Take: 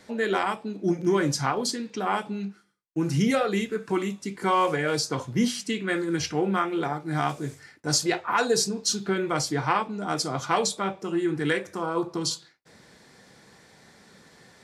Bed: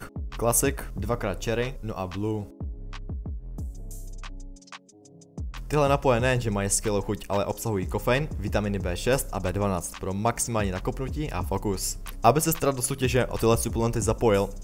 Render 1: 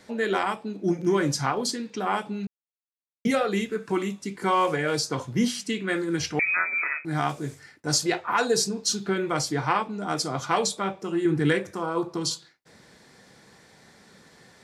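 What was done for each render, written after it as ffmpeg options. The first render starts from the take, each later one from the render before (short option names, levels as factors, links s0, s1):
-filter_complex "[0:a]asettb=1/sr,asplit=3[s0][s1][s2];[s0]atrim=end=6.394[s3];[s1]atrim=start=6.39:end=7.05,asetpts=PTS-STARTPTS,afade=t=in:d=0.004:c=qsin,afade=t=out:st=0.656:d=0.004:c=qsin,lowpass=f=2300:t=q:w=0.5098,lowpass=f=2300:t=q:w=0.6013,lowpass=f=2300:t=q:w=0.9,lowpass=f=2300:t=q:w=2.563,afreqshift=-2700[s4];[s2]atrim=start=7.046[s5];[s3][s4]acrossfade=d=0.004:c1=hsin:c2=qsin[s6];[s6][s5]acrossfade=d=0.004:c1=qsin:c2=hsin,asettb=1/sr,asplit=3[s7][s8][s9];[s7]atrim=end=11.254[s10];[s8]atrim=start=11.25:end=11.71,asetpts=PTS-STARTPTS,afade=t=in:d=0.004:c=qsin,afade=t=out:st=0.456:d=0.004:c=qsin,lowshelf=f=280:g=8.5[s11];[s9]atrim=start=11.706[s12];[s10][s11]acrossfade=d=0.004:c1=hsin:c2=qsin[s13];[s13][s12]acrossfade=d=0.004:c1=qsin:c2=hsin,asplit=3[s14][s15][s16];[s14]atrim=end=2.47,asetpts=PTS-STARTPTS,afade=t=out:st=2.466:d=0.004:c=hsin[s17];[s15]atrim=start=2.47:end=3.25,asetpts=PTS-STARTPTS,volume=0[s18];[s16]atrim=start=3.25,asetpts=PTS-STARTPTS,afade=t=in:d=0.004:c=hsin[s19];[s17][s18][s19]concat=n=3:v=0:a=1"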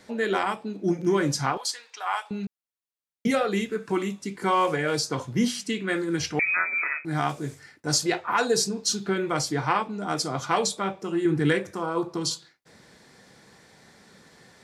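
-filter_complex "[0:a]asettb=1/sr,asplit=3[s0][s1][s2];[s0]atrim=end=1.574[s3];[s1]atrim=start=1.57:end=2.31,asetpts=PTS-STARTPTS,afade=t=in:d=0.004:c=qsin,afade=t=out:st=0.736:d=0.004:c=qsin,highpass=f=760:w=0.5412,highpass=f=760:w=1.3066[s4];[s2]atrim=start=2.306[s5];[s3][s4]acrossfade=d=0.004:c1=hsin:c2=qsin[s6];[s6][s5]acrossfade=d=0.004:c1=qsin:c2=hsin"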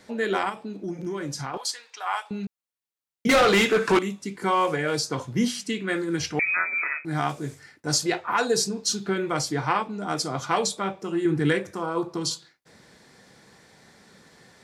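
-filter_complex "[0:a]asettb=1/sr,asplit=3[s0][s1][s2];[s0]atrim=end=0.494[s3];[s1]atrim=start=0.49:end=1.54,asetpts=PTS-STARTPTS,afade=t=in:d=0.004:c=qsin,afade=t=out:st=1.046:d=0.004:c=qsin,acompressor=threshold=0.0316:ratio=3:attack=3.2:release=140:knee=1:detection=peak[s4];[s2]atrim=start=1.536[s5];[s3][s4]acrossfade=d=0.004:c1=hsin:c2=qsin[s6];[s6][s5]acrossfade=d=0.004:c1=qsin:c2=hsin,asettb=1/sr,asplit=3[s7][s8][s9];[s7]atrim=end=3.294[s10];[s8]atrim=start=3.29:end=3.99,asetpts=PTS-STARTPTS,afade=t=in:d=0.004:c=qsin,afade=t=out:st=0.696:d=0.004:c=qsin,asplit=2[s11][s12];[s12]highpass=f=720:p=1,volume=22.4,asoftclip=type=tanh:threshold=0.282[s13];[s11][s13]amix=inputs=2:normalize=0,lowpass=f=5000:p=1,volume=0.501[s14];[s9]atrim=start=3.986[s15];[s10][s14]acrossfade=d=0.004:c1=hsin:c2=qsin[s16];[s16][s15]acrossfade=d=0.004:c1=qsin:c2=hsin"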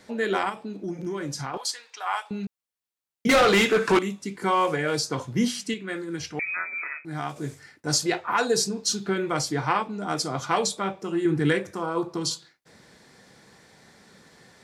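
-filter_complex "[0:a]asplit=3[s0][s1][s2];[s0]atrim=end=5.742[s3];[s1]atrim=start=5.738:end=7.362,asetpts=PTS-STARTPTS,volume=0.531[s4];[s2]atrim=start=7.358[s5];[s3][s4]acrossfade=d=0.004:c1=hsin:c2=hsin[s6];[s6][s5]acrossfade=d=0.004:c1=hsin:c2=hsin"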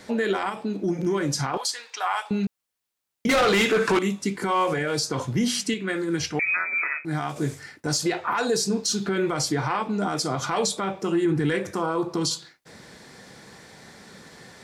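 -af "acontrast=79,alimiter=limit=0.168:level=0:latency=1:release=107"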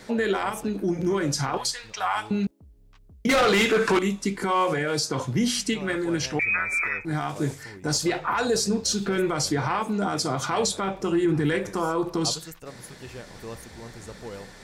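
-filter_complex "[1:a]volume=0.133[s0];[0:a][s0]amix=inputs=2:normalize=0"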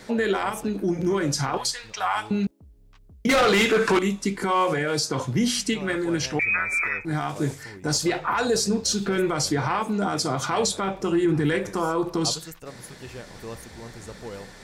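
-af "volume=1.12"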